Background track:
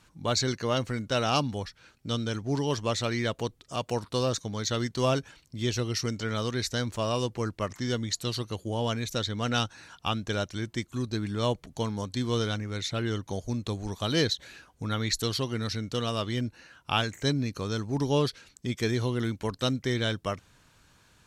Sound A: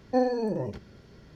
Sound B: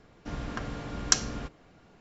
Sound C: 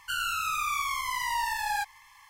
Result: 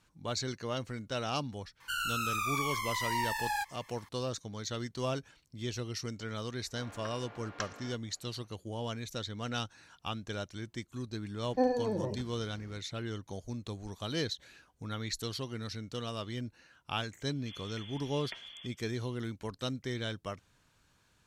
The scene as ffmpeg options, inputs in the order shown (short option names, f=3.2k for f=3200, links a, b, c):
-filter_complex "[2:a]asplit=2[a][b];[0:a]volume=-8.5dB[c];[3:a]acontrast=53[d];[a]highpass=510,lowpass=2.7k[e];[b]lowpass=f=3k:t=q:w=0.5098,lowpass=f=3k:t=q:w=0.6013,lowpass=f=3k:t=q:w=0.9,lowpass=f=3k:t=q:w=2.563,afreqshift=-3500[f];[d]atrim=end=2.29,asetpts=PTS-STARTPTS,volume=-10dB,afade=t=in:d=0.004:c=hsin,afade=t=out:st=2.286:d=0.004:c=hsin,adelay=1800[g];[e]atrim=end=2,asetpts=PTS-STARTPTS,volume=-7dB,afade=t=in:d=0.004:c=hsin,afade=t=out:st=1.996:d=0.004:c=hsin,adelay=6480[h];[1:a]atrim=end=1.35,asetpts=PTS-STARTPTS,volume=-4dB,afade=t=in:d=0.004:c=hsin,afade=t=out:st=1.346:d=0.004:c=hsin,adelay=11440[i];[f]atrim=end=2,asetpts=PTS-STARTPTS,volume=-14dB,afade=t=in:d=0.004:c=hsin,afade=t=out:st=1.996:d=0.004:c=hsin,adelay=17200[j];[c][g][h][i][j]amix=inputs=5:normalize=0"